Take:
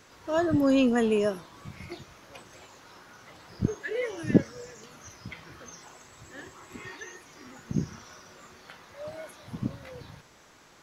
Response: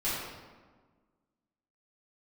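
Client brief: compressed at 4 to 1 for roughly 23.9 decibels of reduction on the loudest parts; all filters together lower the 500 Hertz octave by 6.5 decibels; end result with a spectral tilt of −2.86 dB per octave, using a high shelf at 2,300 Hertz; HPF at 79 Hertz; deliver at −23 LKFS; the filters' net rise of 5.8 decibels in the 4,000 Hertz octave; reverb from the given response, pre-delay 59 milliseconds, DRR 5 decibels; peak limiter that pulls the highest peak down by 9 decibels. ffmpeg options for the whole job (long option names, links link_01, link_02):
-filter_complex "[0:a]highpass=79,equalizer=frequency=500:width_type=o:gain=-8.5,highshelf=frequency=2300:gain=4,equalizer=frequency=4000:width_type=o:gain=4.5,acompressor=threshold=-46dB:ratio=4,alimiter=level_in=16.5dB:limit=-24dB:level=0:latency=1,volume=-16.5dB,asplit=2[link_01][link_02];[1:a]atrim=start_sample=2205,adelay=59[link_03];[link_02][link_03]afir=irnorm=-1:irlink=0,volume=-13dB[link_04];[link_01][link_04]amix=inputs=2:normalize=0,volume=25.5dB"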